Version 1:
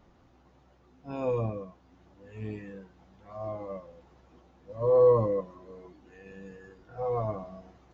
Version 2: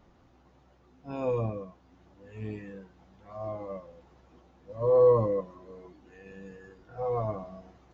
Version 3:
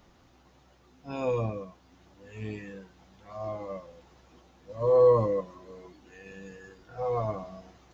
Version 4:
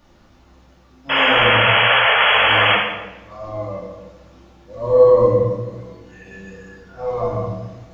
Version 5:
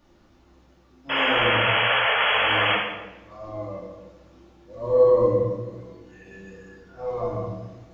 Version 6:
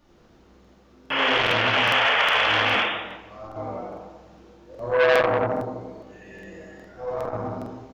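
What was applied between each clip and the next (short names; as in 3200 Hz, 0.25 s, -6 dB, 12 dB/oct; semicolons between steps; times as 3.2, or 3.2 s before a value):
nothing audible
high shelf 2200 Hz +10.5 dB
painted sound noise, 1.09–2.75, 420–3400 Hz -22 dBFS; shoebox room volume 510 m³, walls mixed, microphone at 2.5 m; gain +1.5 dB
bell 340 Hz +6 dB 0.59 oct; gain -7 dB
frequency-shifting echo 87 ms, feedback 33%, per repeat +140 Hz, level -3 dB; crackling interface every 0.41 s, samples 2048, repeat, from 0.6; core saturation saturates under 1500 Hz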